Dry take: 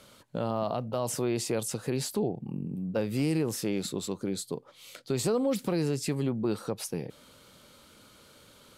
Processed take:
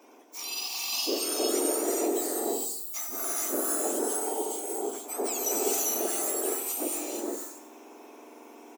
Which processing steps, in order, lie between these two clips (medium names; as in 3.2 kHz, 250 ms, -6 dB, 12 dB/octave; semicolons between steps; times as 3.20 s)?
spectrum inverted on a logarithmic axis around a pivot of 1.8 kHz; high-pass 340 Hz 12 dB/octave; feedback delay 93 ms, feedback 44%, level -12.5 dB; gated-style reverb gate 500 ms rising, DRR -3.5 dB